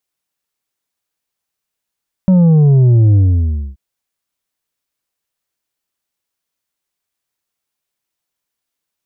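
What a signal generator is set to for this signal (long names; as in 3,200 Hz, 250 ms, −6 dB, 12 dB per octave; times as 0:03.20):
bass drop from 190 Hz, over 1.48 s, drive 5.5 dB, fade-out 0.61 s, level −6.5 dB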